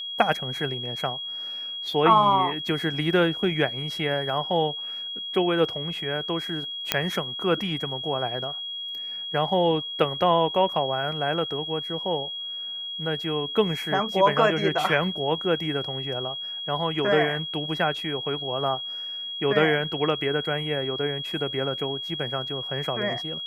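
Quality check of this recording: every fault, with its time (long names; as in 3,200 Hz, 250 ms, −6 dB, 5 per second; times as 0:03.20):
whistle 3,300 Hz −31 dBFS
0:06.92: click −3 dBFS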